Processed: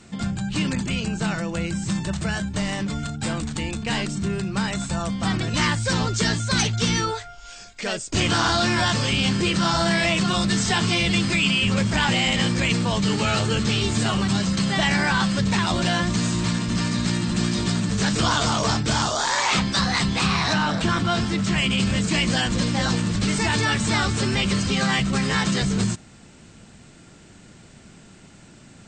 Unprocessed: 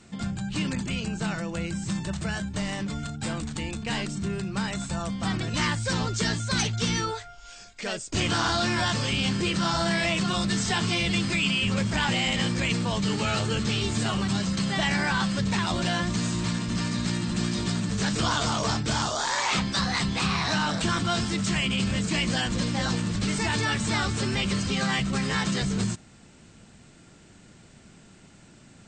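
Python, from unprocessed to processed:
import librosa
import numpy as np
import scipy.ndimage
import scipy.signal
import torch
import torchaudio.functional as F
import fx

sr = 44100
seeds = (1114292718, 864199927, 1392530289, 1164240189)

y = fx.lowpass(x, sr, hz=3600.0, slope=6, at=(20.53, 21.58))
y = y * librosa.db_to_amplitude(4.5)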